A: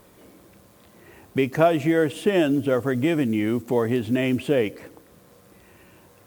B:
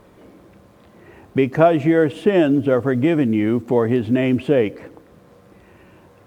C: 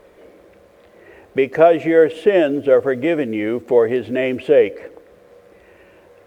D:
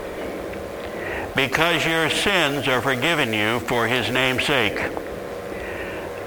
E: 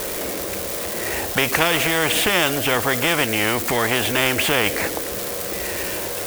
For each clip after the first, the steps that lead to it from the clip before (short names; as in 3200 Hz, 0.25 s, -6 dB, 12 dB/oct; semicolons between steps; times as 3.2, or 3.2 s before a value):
LPF 1900 Hz 6 dB/oct; gain +5 dB
graphic EQ 125/250/500/1000/2000 Hz -10/-6/+9/-4/+5 dB; gain -1 dB
spectral compressor 4:1
switching spikes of -16.5 dBFS